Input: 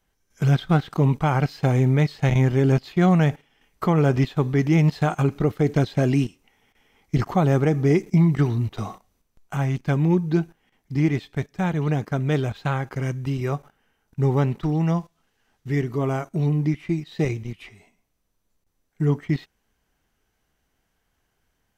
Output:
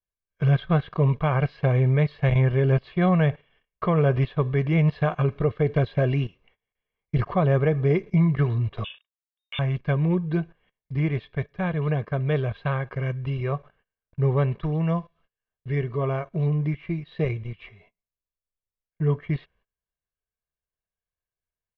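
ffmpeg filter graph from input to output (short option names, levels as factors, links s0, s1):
-filter_complex "[0:a]asettb=1/sr,asplit=3[s0][s1][s2];[s0]atrim=end=8.844[s3];[s1]atrim=start=8.84:end=9.59,asetpts=PTS-STARTPTS,afade=t=in:d=0.004:c=qsin,afade=t=out:st=0.746:d=0.004:c=qsin,aeval=exprs='sgn(val(0))*max(abs(val(0))-0.00112,0)':c=same,lowpass=f=3100:t=q:w=0.5098,lowpass=f=3100:t=q:w=0.6013,lowpass=f=3100:t=q:w=0.9,lowpass=f=3100:t=q:w=2.563,afreqshift=-3700[s4];[s2]atrim=start=9.586[s5];[s3][s4]acrossfade=d=0.004:c1=hsin:c2=qsin[s6];[s6][s5]acrossfade=d=0.004:c1=qsin:c2=hsin,lowpass=f=3300:w=0.5412,lowpass=f=3300:w=1.3066,agate=range=0.0708:threshold=0.00158:ratio=16:detection=peak,aecho=1:1:1.8:0.62,volume=0.75"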